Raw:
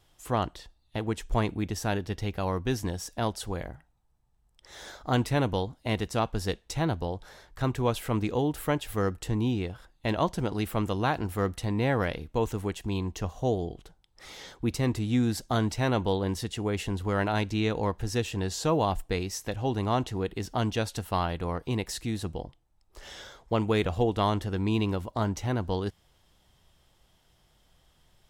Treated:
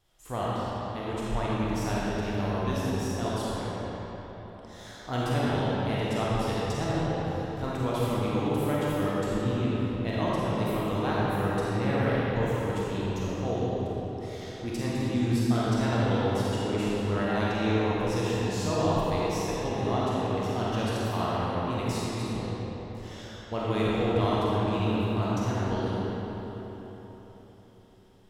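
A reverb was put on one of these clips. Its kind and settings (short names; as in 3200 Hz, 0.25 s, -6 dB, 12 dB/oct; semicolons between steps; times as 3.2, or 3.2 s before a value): digital reverb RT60 4.3 s, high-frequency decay 0.65×, pre-delay 5 ms, DRR -8 dB; gain -7.5 dB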